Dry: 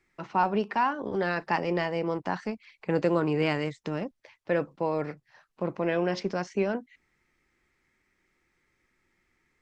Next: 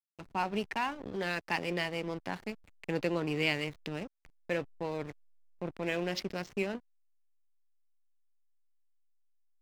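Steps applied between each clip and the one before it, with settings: resonant high shelf 1.8 kHz +8.5 dB, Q 1.5; hysteresis with a dead band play -30.5 dBFS; trim -6.5 dB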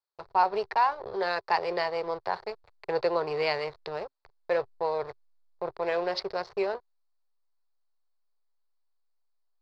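FFT filter 120 Hz 0 dB, 270 Hz -17 dB, 390 Hz +9 dB, 1 kHz +14 dB, 3 kHz -4 dB, 4.4 kHz +12 dB, 6.5 kHz -9 dB, 12 kHz -18 dB; trim -2.5 dB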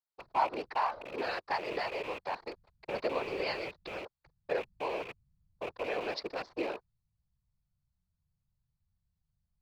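rattle on loud lows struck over -48 dBFS, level -26 dBFS; whisper effect; trim -6.5 dB

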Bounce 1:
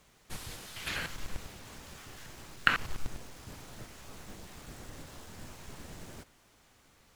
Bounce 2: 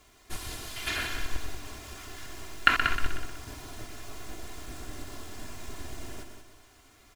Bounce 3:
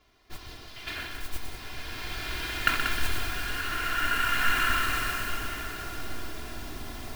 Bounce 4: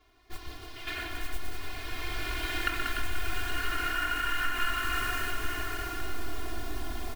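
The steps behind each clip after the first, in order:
comb 2.9 ms, depth 69%; on a send: multi-head delay 62 ms, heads second and third, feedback 41%, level -9 dB; on the sum: trim +2.5 dB
steep low-pass 5.5 kHz; modulation noise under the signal 15 dB; swelling reverb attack 2020 ms, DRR -7.5 dB; trim -4.5 dB
comb 2.8 ms, depth 91%; compression 6:1, threshold -23 dBFS, peak gain reduction 10 dB; echo whose repeats swap between lows and highs 147 ms, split 1 kHz, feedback 56%, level -3.5 dB; trim -3.5 dB

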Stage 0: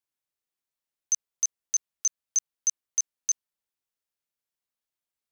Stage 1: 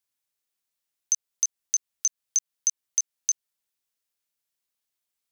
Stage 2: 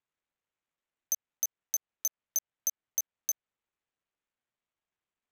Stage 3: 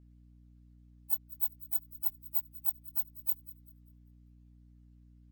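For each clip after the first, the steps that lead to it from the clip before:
treble shelf 2.1 kHz +7 dB; compression, threshold -21 dBFS, peak gain reduction 7 dB
median filter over 9 samples
frequency axis rescaled in octaves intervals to 130%; hum 60 Hz, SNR 19 dB; feedback echo behind a high-pass 196 ms, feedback 31%, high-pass 2.8 kHz, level -18 dB; trim +7.5 dB

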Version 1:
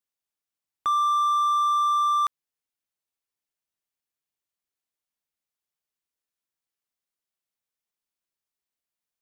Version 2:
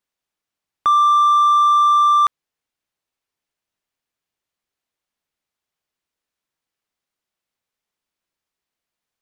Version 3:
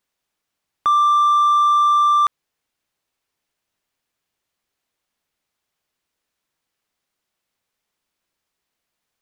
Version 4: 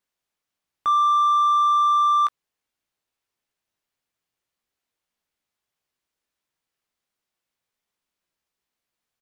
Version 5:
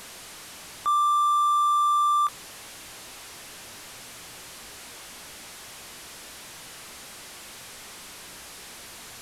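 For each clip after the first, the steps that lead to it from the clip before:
treble shelf 6.5 kHz -10.5 dB; trim +9 dB
peak limiter -16 dBFS, peak gain reduction 7 dB; trim +5.5 dB
doubling 17 ms -9 dB; trim -6 dB
one-bit delta coder 64 kbps, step -33 dBFS; trim -3.5 dB

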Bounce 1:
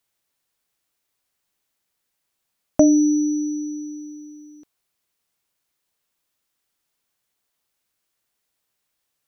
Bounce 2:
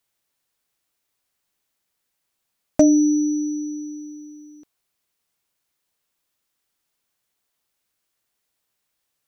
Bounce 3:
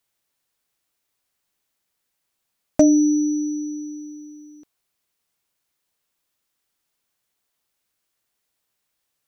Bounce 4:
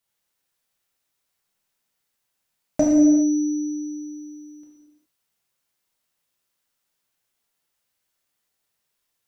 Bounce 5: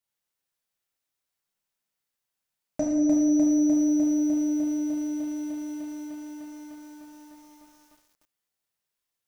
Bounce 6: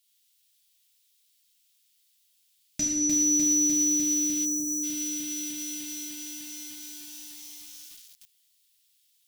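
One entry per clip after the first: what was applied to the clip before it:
hard clipper -5 dBFS, distortion -33 dB
no audible change
gated-style reverb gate 440 ms falling, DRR -4 dB; trim -5.5 dB
bit-crushed delay 301 ms, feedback 80%, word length 8-bit, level -3 dB; trim -8 dB
FFT filter 220 Hz 0 dB, 560 Hz -24 dB, 3.3 kHz +13 dB, 6.2 kHz +8 dB; spectral selection erased 4.45–4.83 s, 840–5400 Hz; treble shelf 2.7 kHz +10 dB

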